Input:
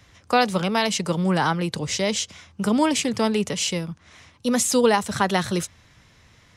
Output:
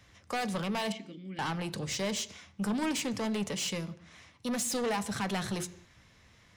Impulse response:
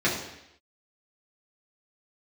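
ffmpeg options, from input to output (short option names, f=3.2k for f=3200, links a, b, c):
-filter_complex "[0:a]asettb=1/sr,asplit=3[a][b][c];[a]atrim=end=0.924[d];[b]atrim=start=0.92:end=1.39,asetpts=PTS-STARTPTS,afade=t=in:d=0.004:c=qsin,afade=t=out:st=0.466:d=0.004:c=qsin,asplit=3[e][f][g];[e]bandpass=f=270:t=q:w=8,volume=0dB[h];[f]bandpass=f=2.29k:t=q:w=8,volume=-6dB[i];[g]bandpass=f=3.01k:t=q:w=8,volume=-9dB[j];[h][i][j]amix=inputs=3:normalize=0[k];[c]atrim=start=1.386[l];[d][k]acrossfade=d=0.004:c1=hsin:c2=qsin[m];[m][l]acrossfade=d=0.004:c1=qsin:c2=hsin,asoftclip=type=tanh:threshold=-22.5dB,asplit=2[n][o];[1:a]atrim=start_sample=2205,afade=t=out:st=0.32:d=0.01,atrim=end_sample=14553[p];[o][p]afir=irnorm=-1:irlink=0,volume=-25dB[q];[n][q]amix=inputs=2:normalize=0,volume=-6.5dB"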